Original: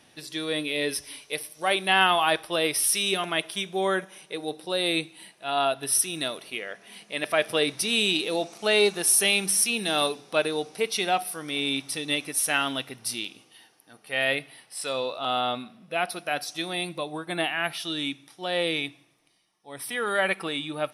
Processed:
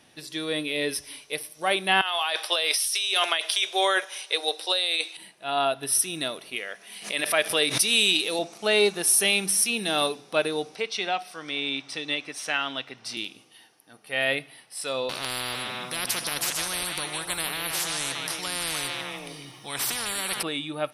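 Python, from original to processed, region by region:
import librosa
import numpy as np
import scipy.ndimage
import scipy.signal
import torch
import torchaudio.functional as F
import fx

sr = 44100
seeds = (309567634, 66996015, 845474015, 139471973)

y = fx.chain(x, sr, fx.highpass(hz=460.0, slope=24),
    fx.peak_eq(hz=4600.0, db=10.5, octaves=2.1),
    fx.over_compress(threshold_db=-25.0, ratio=-1.0), at=(2.01, 5.17))
y = fx.chain(y, sr, fx.highpass(hz=47.0, slope=12),
    fx.tilt_eq(slope=2.0),
    fx.pre_swell(db_per_s=120.0), at=(6.56, 8.39))
y = fx.chain(y, sr, fx.moving_average(points=4),
    fx.low_shelf(hz=420.0, db=-9.0),
    fx.band_squash(depth_pct=40), at=(10.75, 13.17))
y = fx.chain(y, sr, fx.echo_stepped(ms=150, hz=2800.0, octaves=-1.4, feedback_pct=70, wet_db=-3.5),
    fx.spectral_comp(ratio=10.0), at=(15.09, 20.43))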